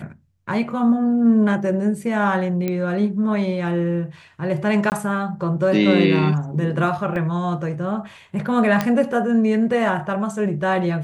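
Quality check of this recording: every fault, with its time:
0:02.68: click −11 dBFS
0:04.90–0:04.92: drop-out 19 ms
0:07.16: drop-out 2 ms
0:08.81: click −6 dBFS

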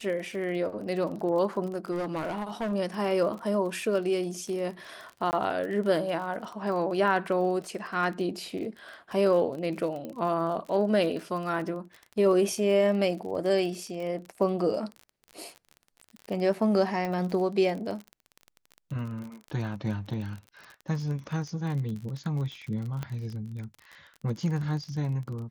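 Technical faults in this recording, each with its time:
surface crackle 36 per second −35 dBFS
0:01.91–0:02.73: clipping −27.5 dBFS
0:05.31–0:05.33: drop-out 19 ms
0:10.05: click −25 dBFS
0:17.05: click −20 dBFS
0:23.03: click −20 dBFS

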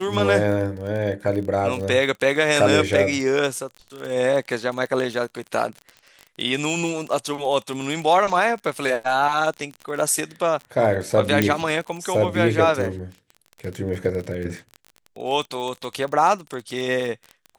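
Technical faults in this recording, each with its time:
surface crackle 31 per second −28 dBFS
0:11.42: click −5 dBFS

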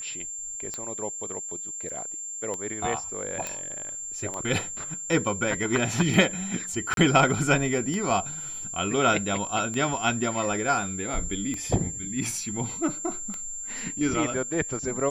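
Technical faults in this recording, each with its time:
scratch tick 33 1/3 rpm −19 dBFS
whistle 7,300 Hz −33 dBFS
0:01.89: drop-out 4.8 ms
0:03.47: click −15 dBFS
0:06.94–0:06.97: drop-out 32 ms

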